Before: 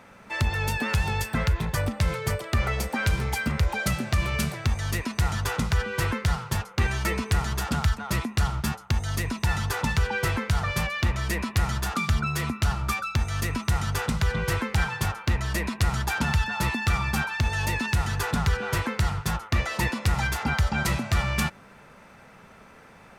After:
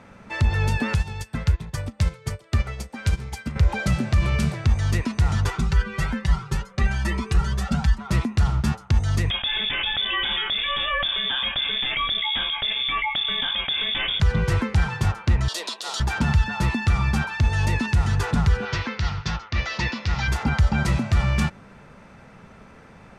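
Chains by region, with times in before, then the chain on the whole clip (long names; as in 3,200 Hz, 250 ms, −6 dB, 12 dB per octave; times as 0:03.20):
0:00.95–0:03.56: high-shelf EQ 3,300 Hz +7.5 dB + expander for the loud parts 2.5 to 1, over −31 dBFS
0:05.50–0:08.10: comb filter 5.2 ms, depth 78% + flanger whose copies keep moving one way rising 1.2 Hz
0:09.30–0:14.20: double-tracking delay 26 ms −10 dB + voice inversion scrambler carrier 3,500 Hz + envelope flattener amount 50%
0:15.48–0:16.00: high-pass filter 440 Hz 24 dB per octave + high shelf with overshoot 2,800 Hz +8 dB, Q 3
0:18.65–0:20.28: Butterworth low-pass 5,700 Hz + tilt shelving filter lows −6.5 dB, about 1,500 Hz
whole clip: brickwall limiter −16.5 dBFS; low-pass filter 8,400 Hz 12 dB per octave; low-shelf EQ 340 Hz +8 dB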